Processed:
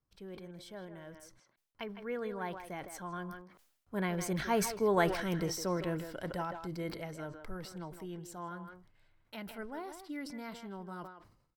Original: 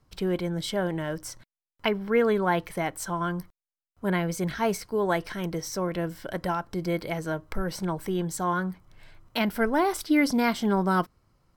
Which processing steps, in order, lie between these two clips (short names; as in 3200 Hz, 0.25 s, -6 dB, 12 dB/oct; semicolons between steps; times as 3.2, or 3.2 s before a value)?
Doppler pass-by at 5.1, 9 m/s, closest 5.9 m; speakerphone echo 0.16 s, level -9 dB; sustainer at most 78 dB/s; gain -2.5 dB